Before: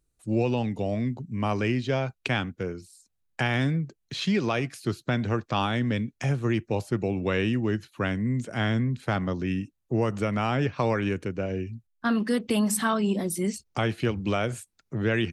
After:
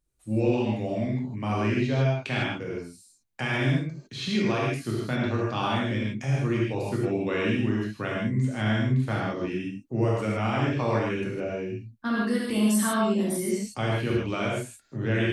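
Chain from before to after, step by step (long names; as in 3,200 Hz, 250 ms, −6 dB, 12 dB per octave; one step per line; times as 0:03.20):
reverb whose tail is shaped and stops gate 180 ms flat, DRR −5 dB
level −6 dB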